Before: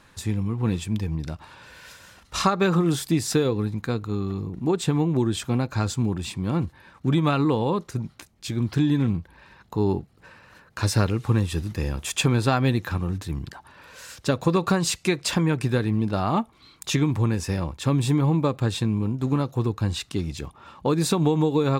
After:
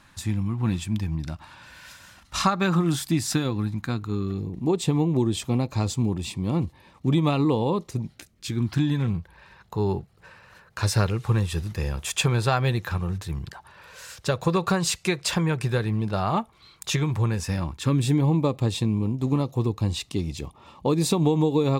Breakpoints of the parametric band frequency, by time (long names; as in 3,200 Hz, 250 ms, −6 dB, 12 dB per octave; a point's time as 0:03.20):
parametric band −15 dB 0.34 octaves
0:03.95 450 Hz
0:04.58 1,500 Hz
0:07.97 1,500 Hz
0:09.08 270 Hz
0:17.32 270 Hz
0:18.30 1,500 Hz